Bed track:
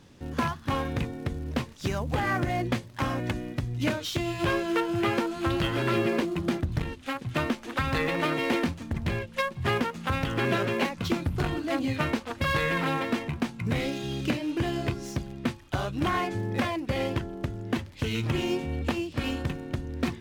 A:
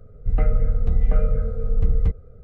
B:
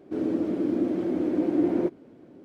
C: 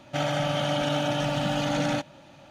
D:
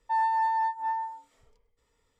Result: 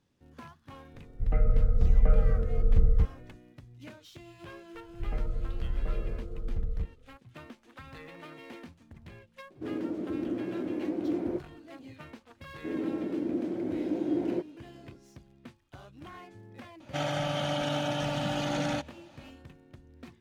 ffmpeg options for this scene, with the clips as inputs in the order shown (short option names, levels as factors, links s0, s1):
-filter_complex "[1:a]asplit=2[s0][s1];[2:a]asplit=2[s2][s3];[0:a]volume=0.1[s4];[s0]dynaudnorm=f=100:g=9:m=3.76[s5];[s3]bandreject=f=1200:w=14[s6];[s5]atrim=end=2.43,asetpts=PTS-STARTPTS,volume=0.335,afade=t=in:d=0.004:c=hsin,afade=t=out:st=2.426:d=0.004:c=hsin,adelay=940[s7];[s1]atrim=end=2.43,asetpts=PTS-STARTPTS,volume=0.224,afade=t=in:d=0.004:c=hsin,afade=t=out:st=2.426:d=0.004:c=hsin,adelay=4740[s8];[s2]atrim=end=2.44,asetpts=PTS-STARTPTS,volume=0.422,afade=t=in:d=0.004:c=hsin,afade=t=out:st=2.436:d=0.004:c=hsin,adelay=9500[s9];[s6]atrim=end=2.44,asetpts=PTS-STARTPTS,volume=0.501,afade=t=in:d=0.004:c=hsin,afade=t=out:st=2.436:d=0.004:c=hsin,adelay=12530[s10];[3:a]atrim=end=2.5,asetpts=PTS-STARTPTS,volume=0.596,afade=t=in:d=0.004:c=hsin,afade=t=out:st=2.496:d=0.004:c=hsin,adelay=16800[s11];[s4][s7][s8][s9][s10][s11]amix=inputs=6:normalize=0"